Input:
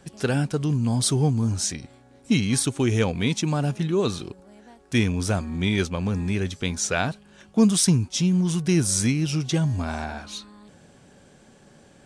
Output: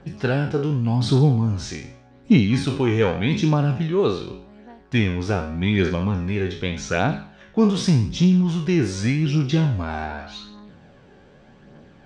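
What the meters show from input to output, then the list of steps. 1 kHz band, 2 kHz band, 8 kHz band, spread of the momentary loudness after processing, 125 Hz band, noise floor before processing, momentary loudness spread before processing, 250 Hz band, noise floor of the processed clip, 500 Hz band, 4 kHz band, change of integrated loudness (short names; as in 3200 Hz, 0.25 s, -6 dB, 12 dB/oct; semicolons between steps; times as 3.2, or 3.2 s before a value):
+3.5 dB, +2.5 dB, -11.5 dB, 12 LU, +3.5 dB, -53 dBFS, 9 LU, +2.5 dB, -50 dBFS, +4.0 dB, -1.5 dB, +2.5 dB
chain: spectral trails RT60 0.53 s; bell 85 Hz -3.5 dB 0.35 oct; phaser 0.85 Hz, delay 2.7 ms, feedback 35%; air absorption 220 m; gain +2 dB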